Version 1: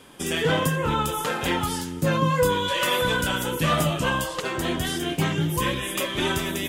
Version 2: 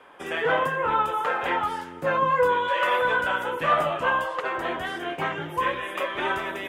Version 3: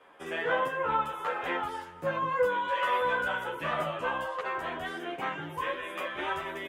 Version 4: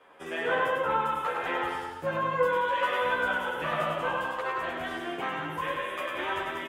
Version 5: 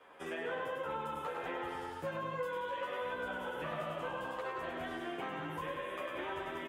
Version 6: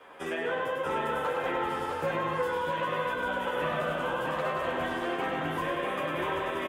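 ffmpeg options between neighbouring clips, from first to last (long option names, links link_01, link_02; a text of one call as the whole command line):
ffmpeg -i in.wav -filter_complex "[0:a]acrossover=split=480 2200:gain=0.1 1 0.0631[link_01][link_02][link_03];[link_01][link_02][link_03]amix=inputs=3:normalize=0,volume=4.5dB" out.wav
ffmpeg -i in.wav -filter_complex "[0:a]asplit=2[link_01][link_02];[link_02]adelay=10.9,afreqshift=1.1[link_03];[link_01][link_03]amix=inputs=2:normalize=1,volume=-3dB" out.wav
ffmpeg -i in.wav -af "aecho=1:1:100|180|244|295.2|336.2:0.631|0.398|0.251|0.158|0.1" out.wav
ffmpeg -i in.wav -filter_complex "[0:a]acrossover=split=710|2700[link_01][link_02][link_03];[link_01]acompressor=threshold=-38dB:ratio=4[link_04];[link_02]acompressor=threshold=-43dB:ratio=4[link_05];[link_03]acompressor=threshold=-54dB:ratio=4[link_06];[link_04][link_05][link_06]amix=inputs=3:normalize=0,volume=-2dB" out.wav
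ffmpeg -i in.wav -af "aecho=1:1:645:0.668,volume=7.5dB" out.wav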